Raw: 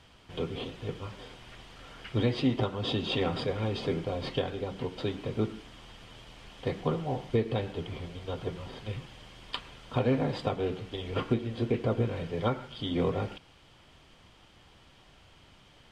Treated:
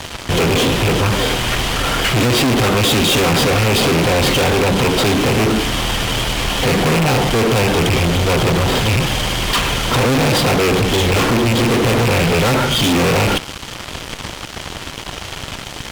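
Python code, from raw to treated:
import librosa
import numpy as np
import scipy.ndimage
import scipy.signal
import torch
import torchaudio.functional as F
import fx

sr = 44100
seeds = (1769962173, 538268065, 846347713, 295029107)

y = fx.rattle_buzz(x, sr, strikes_db=-35.0, level_db=-26.0)
y = fx.fuzz(y, sr, gain_db=51.0, gate_db=-56.0)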